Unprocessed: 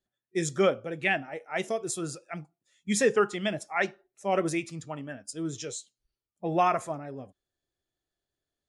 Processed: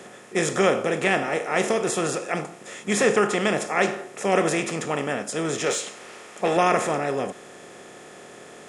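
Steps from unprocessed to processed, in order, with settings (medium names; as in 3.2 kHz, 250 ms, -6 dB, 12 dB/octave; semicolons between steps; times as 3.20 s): spectral levelling over time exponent 0.4; 5.66–6.57 s: overdrive pedal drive 11 dB, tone 6.3 kHz, clips at -11.5 dBFS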